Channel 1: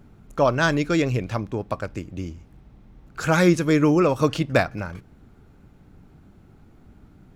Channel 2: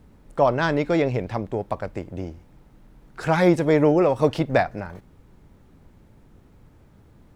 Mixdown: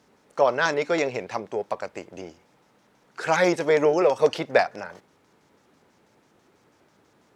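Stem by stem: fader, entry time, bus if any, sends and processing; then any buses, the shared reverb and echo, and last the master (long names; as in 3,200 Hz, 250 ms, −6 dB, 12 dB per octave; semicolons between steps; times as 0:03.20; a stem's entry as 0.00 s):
+3.0 dB, 0.00 s, no send, bit reduction 11 bits; auto-filter band-pass square 6.1 Hz 420–5,800 Hz; Bessel high-pass filter 280 Hz, order 8
+0.5 dB, 0.00 s, no send, no processing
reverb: not used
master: meter weighting curve A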